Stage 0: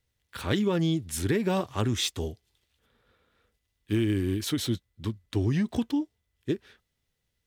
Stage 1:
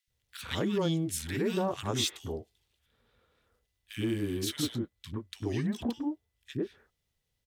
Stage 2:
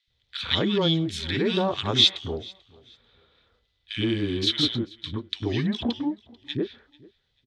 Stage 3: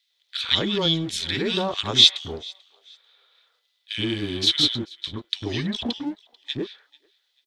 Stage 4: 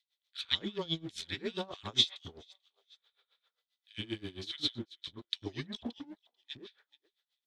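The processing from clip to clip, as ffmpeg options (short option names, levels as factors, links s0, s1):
-filter_complex "[0:a]acrossover=split=150[s0][s1];[s0]acompressor=threshold=0.01:ratio=6[s2];[s2][s1]amix=inputs=2:normalize=0,acrossover=split=270|1600[s3][s4][s5];[s3]adelay=70[s6];[s4]adelay=100[s7];[s6][s7][s5]amix=inputs=3:normalize=0,volume=0.841"
-af "lowpass=f=3700:t=q:w=3.3,bandreject=f=2800:w=16,aecho=1:1:440|880:0.0631|0.0158,volume=1.88"
-filter_complex "[0:a]highshelf=f=3800:g=11.5,acrossover=split=530[s0][s1];[s0]aeval=exprs='sgn(val(0))*max(abs(val(0))-0.00794,0)':c=same[s2];[s2][s1]amix=inputs=2:normalize=0,volume=0.891"
-af "aeval=exprs='val(0)*pow(10,-22*(0.5-0.5*cos(2*PI*7.5*n/s))/20)':c=same,volume=0.376"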